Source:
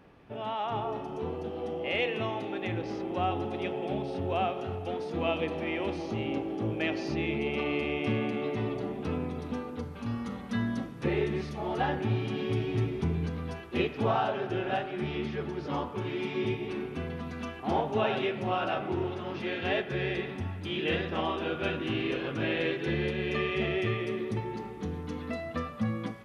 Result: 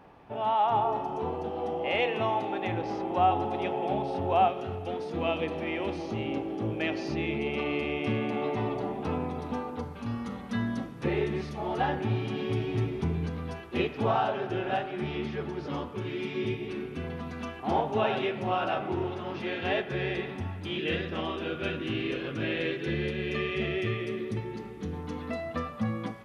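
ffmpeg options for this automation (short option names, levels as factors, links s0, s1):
-af "asetnsamples=n=441:p=0,asendcmd='4.48 equalizer g 1;8.3 equalizer g 9;9.93 equalizer g 2;15.69 equalizer g -5.5;17.04 equalizer g 2.5;20.78 equalizer g -6;24.93 equalizer g 4',equalizer=f=850:t=o:w=0.88:g=9.5"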